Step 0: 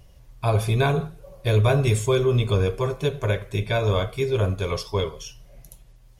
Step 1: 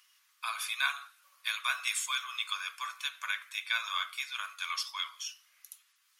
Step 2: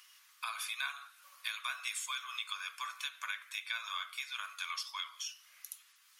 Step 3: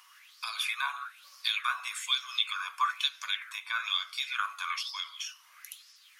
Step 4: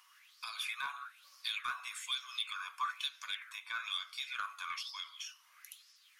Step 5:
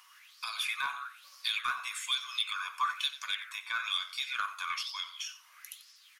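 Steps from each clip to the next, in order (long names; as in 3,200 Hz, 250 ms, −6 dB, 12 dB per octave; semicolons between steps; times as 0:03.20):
elliptic high-pass filter 1,200 Hz, stop band 70 dB
downward compressor 2.5 to 1, threshold −47 dBFS, peak gain reduction 14.5 dB; level +5.5 dB
auto-filter bell 1.1 Hz 920–5,300 Hz +16 dB
soft clipping −20 dBFS, distortion −17 dB; level −6.5 dB
single-tap delay 90 ms −15 dB; level +5.5 dB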